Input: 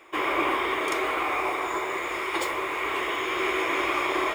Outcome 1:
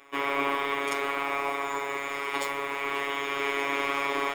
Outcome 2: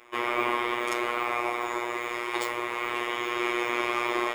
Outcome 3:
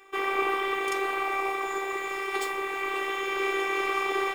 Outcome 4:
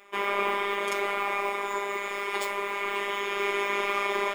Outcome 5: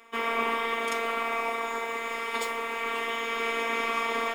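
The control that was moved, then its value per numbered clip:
robot voice, frequency: 140 Hz, 120 Hz, 390 Hz, 200 Hz, 230 Hz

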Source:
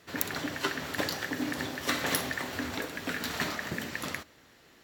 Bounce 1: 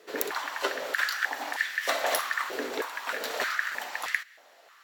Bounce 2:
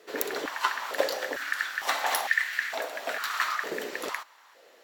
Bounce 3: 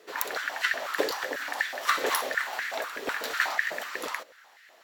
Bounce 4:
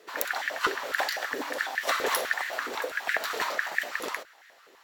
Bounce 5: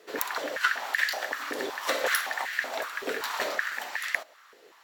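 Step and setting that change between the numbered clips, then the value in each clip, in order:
step-sequenced high-pass, rate: 3.2 Hz, 2.2 Hz, 8.1 Hz, 12 Hz, 5.3 Hz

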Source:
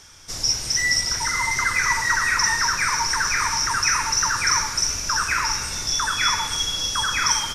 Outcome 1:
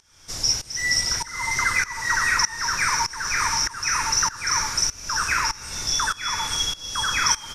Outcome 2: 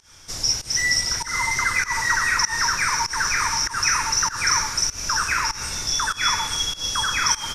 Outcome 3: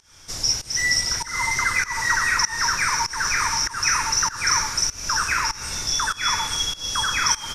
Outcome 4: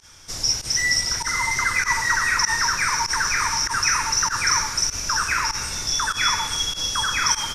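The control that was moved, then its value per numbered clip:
volume shaper, release: 491 ms, 176 ms, 262 ms, 71 ms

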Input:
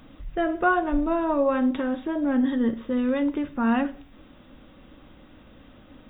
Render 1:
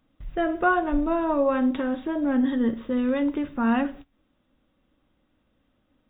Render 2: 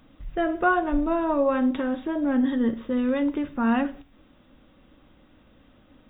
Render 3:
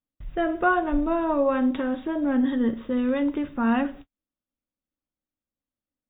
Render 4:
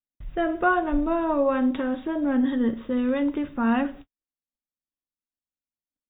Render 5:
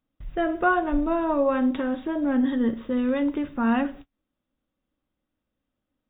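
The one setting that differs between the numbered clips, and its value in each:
gate, range: -19 dB, -6 dB, -45 dB, -57 dB, -32 dB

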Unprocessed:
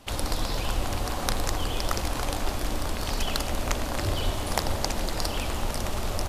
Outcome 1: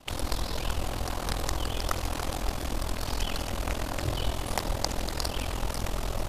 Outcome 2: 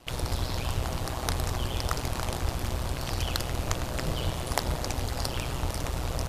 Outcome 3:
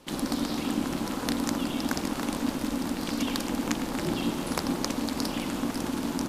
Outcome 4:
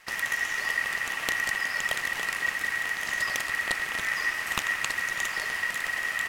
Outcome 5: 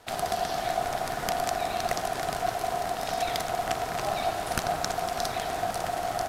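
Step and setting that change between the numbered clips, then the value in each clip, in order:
ring modulator, frequency: 21 Hz, 62 Hz, 260 Hz, 1.9 kHz, 710 Hz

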